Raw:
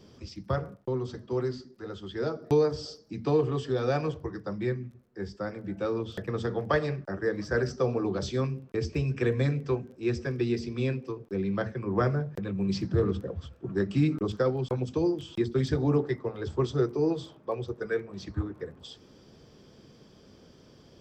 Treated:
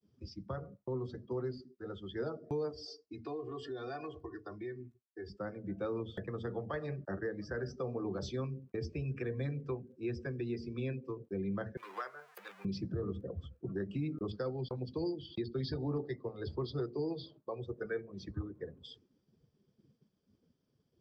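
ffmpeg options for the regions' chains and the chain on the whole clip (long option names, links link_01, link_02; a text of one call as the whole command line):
ffmpeg -i in.wav -filter_complex "[0:a]asettb=1/sr,asplit=3[link_01][link_02][link_03];[link_01]atrim=end=2.714[link_04];[link_02]atrim=start=2.71:end=5.3,asetpts=PTS-STARTPTS,afade=type=in:duration=0.004:curve=qsin,afade=type=out:start_time=2.586:duration=0.004:curve=qsin,lowshelf=frequency=340:gain=-7,aecho=1:1:2.8:0.79,atrim=end_sample=114219,acompressor=threshold=-36dB:ratio=3:attack=3.2:release=140:knee=1:detection=peak[link_05];[link_03]atrim=start=5.296[link_06];[link_04][link_05]acrossfade=duration=0.004:curve1=hsin:curve2=qsin[link_07];[link_07][link_06]acrossfade=duration=0.004:curve1=qsin:curve2=hsin,asettb=1/sr,asplit=3[link_08][link_09][link_10];[link_08]atrim=end=11.774[link_11];[link_09]atrim=start=11.77:end=12.65,asetpts=PTS-STARTPTS,afade=type=in:duration=0.004:curve=qsin,afade=type=out:start_time=0.876:duration=0.004:curve=qsin,aeval=exprs='val(0)+0.5*0.0237*sgn(val(0))':channel_layout=same,highpass=1100[link_12];[link_10]atrim=start=12.646[link_13];[link_11][link_12]acrossfade=duration=0.004:curve1=hsin:curve2=qsin[link_14];[link_14][link_13]acrossfade=duration=0.004:curve1=qsin:curve2=hsin,asettb=1/sr,asplit=3[link_15][link_16][link_17];[link_15]atrim=end=14.314[link_18];[link_16]atrim=start=14.31:end=17.62,asetpts=PTS-STARTPTS,afade=type=in:duration=0.004:curve=qsin,afade=type=out:start_time=3.306:duration=0.004:curve=qsin,highshelf=frequency=3100:gain=-6.5,volume=17dB,asoftclip=hard,volume=-17dB,lowpass=frequency=4600:width_type=q:width=6[link_19];[link_17]atrim=start=17.616[link_20];[link_18][link_19]acrossfade=duration=0.004:curve1=hsin:curve2=qsin[link_21];[link_21][link_20]acrossfade=duration=0.004:curve1=qsin:curve2=hsin,agate=range=-33dB:threshold=-48dB:ratio=3:detection=peak,alimiter=limit=-23.5dB:level=0:latency=1:release=310,afftdn=noise_reduction=16:noise_floor=-47,volume=-4.5dB" out.wav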